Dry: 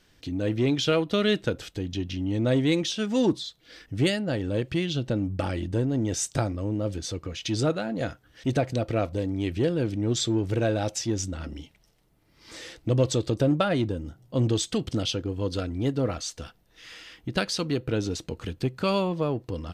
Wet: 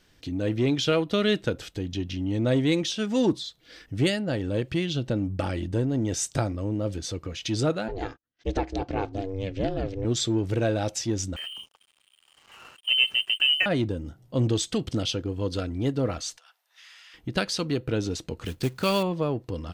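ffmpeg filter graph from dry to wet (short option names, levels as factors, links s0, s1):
-filter_complex "[0:a]asettb=1/sr,asplit=3[s0][s1][s2];[s0]atrim=end=7.884[s3];[s1]atrim=start=7.88:end=10.05,asetpts=PTS-STARTPTS,afade=t=in:d=0.004:c=qsin,afade=t=out:st=2.166:d=0.004:c=qsin,lowpass=f=6600:w=0.5412,lowpass=f=6600:w=1.3066,agate=range=0.0282:threshold=0.00398:ratio=16:release=100:detection=peak,aeval=exprs='val(0)*sin(2*PI*190*n/s)':c=same[s4];[s2]atrim=start=10.046[s5];[s3][s4]acrossfade=d=0.004:c1=hsin:c2=qsin[s6];[s6][s5]acrossfade=d=0.004:c1=qsin:c2=hsin,asettb=1/sr,asplit=3[s7][s8][s9];[s7]atrim=end=11.364[s10];[s8]atrim=start=11.36:end=13.66,asetpts=PTS-STARTPTS,afade=t=in:d=0.004:c=qsin,afade=t=out:st=2.296:d=0.004:c=qsin,acompressor=mode=upward:threshold=0.0141:ratio=2.5:attack=3.2:release=140:knee=2.83:detection=peak,lowpass=f=2700:t=q:w=0.5098,lowpass=f=2700:t=q:w=0.6013,lowpass=f=2700:t=q:w=0.9,lowpass=f=2700:t=q:w=2.563,afreqshift=-3200,aeval=exprs='sgn(val(0))*max(abs(val(0))-0.00335,0)':c=same[s11];[s9]atrim=start=13.656[s12];[s10][s11]acrossfade=d=0.004:c1=hsin:c2=qsin[s13];[s13][s12]acrossfade=d=0.004:c1=qsin:c2=hsin,asettb=1/sr,asplit=3[s14][s15][s16];[s14]atrim=end=16.374[s17];[s15]atrim=start=16.37:end=17.14,asetpts=PTS-STARTPTS,afade=t=in:d=0.004:c=qsin,afade=t=out:st=0.766:d=0.004:c=qsin,acompressor=threshold=0.00501:ratio=8:attack=3.2:release=140:knee=1:detection=peak,highpass=f=810:w=0.5412,highpass=f=810:w=1.3066[s18];[s16]atrim=start=17.136[s19];[s17][s18]acrossfade=d=0.004:c1=hsin:c2=qsin[s20];[s20][s19]acrossfade=d=0.004:c1=qsin:c2=hsin,asettb=1/sr,asplit=3[s21][s22][s23];[s21]atrim=end=18.454[s24];[s22]atrim=start=18.45:end=19.03,asetpts=PTS-STARTPTS,afade=t=in:d=0.004:c=qsin,afade=t=out:st=0.576:d=0.004:c=qsin,highshelf=f=2200:g=4.5,acrusher=bits=4:mode=log:mix=0:aa=0.000001[s25];[s23]atrim=start=19.026[s26];[s24][s25]acrossfade=d=0.004:c1=hsin:c2=qsin[s27];[s27][s26]acrossfade=d=0.004:c1=qsin:c2=hsin"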